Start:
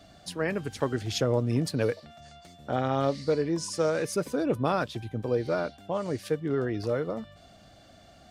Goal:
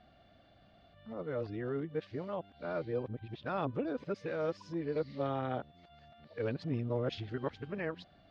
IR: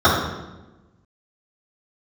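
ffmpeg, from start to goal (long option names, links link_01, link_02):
-af "areverse,lowpass=frequency=3700:width=0.5412,lowpass=frequency=3700:width=1.3066,volume=-8.5dB"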